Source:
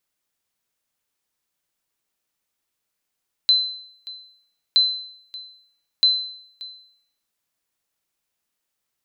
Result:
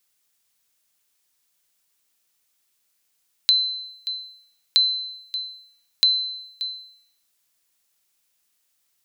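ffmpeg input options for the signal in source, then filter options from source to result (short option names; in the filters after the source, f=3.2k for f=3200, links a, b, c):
-f lavfi -i "aevalsrc='0.335*(sin(2*PI*4050*mod(t,1.27))*exp(-6.91*mod(t,1.27)/0.66)+0.1*sin(2*PI*4050*max(mod(t,1.27)-0.58,0))*exp(-6.91*max(mod(t,1.27)-0.58,0)/0.66))':d=3.81:s=44100"
-af "lowpass=f=4k:p=1,acompressor=threshold=-34dB:ratio=2,crystalizer=i=5.5:c=0"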